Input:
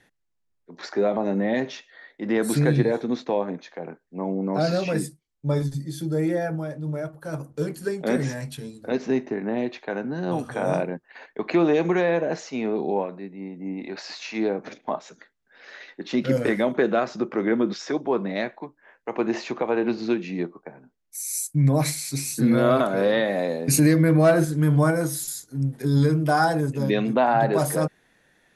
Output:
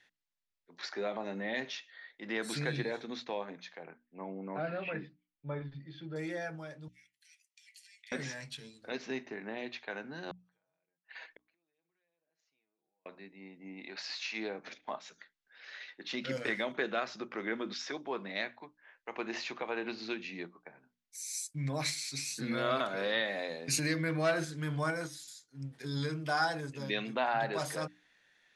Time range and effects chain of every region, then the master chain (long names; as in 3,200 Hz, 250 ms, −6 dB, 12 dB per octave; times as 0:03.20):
0:03.83–0:06.16: low-pass filter 3,000 Hz 24 dB per octave + treble cut that deepens with the level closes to 2,100 Hz, closed at −19 dBFS
0:06.88–0:08.12: dynamic equaliser 5,200 Hz, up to −4 dB, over −54 dBFS, Q 1 + downward compressor 2.5 to 1, threshold −30 dBFS + Chebyshev high-pass with heavy ripple 1,900 Hz, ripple 3 dB
0:10.31–0:13.06: comb filter 6.2 ms, depth 62% + downward compressor 16 to 1, threshold −31 dBFS + gate with flip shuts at −29 dBFS, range −37 dB
0:25.06–0:25.71: high-shelf EQ 8,800 Hz −4.5 dB + expander for the loud parts, over −39 dBFS
whole clip: low-pass filter 4,500 Hz 12 dB per octave; tilt shelving filter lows −9.5 dB, about 1,300 Hz; mains-hum notches 60/120/180/240/300 Hz; level −7.5 dB